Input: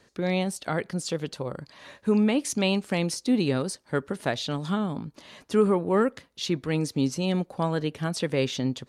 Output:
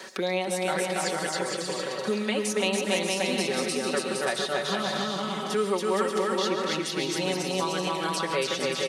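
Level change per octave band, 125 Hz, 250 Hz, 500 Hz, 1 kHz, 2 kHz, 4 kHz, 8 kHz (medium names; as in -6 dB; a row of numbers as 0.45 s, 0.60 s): -8.0 dB, -5.5 dB, +1.0 dB, +4.5 dB, +5.0 dB, +5.0 dB, +4.5 dB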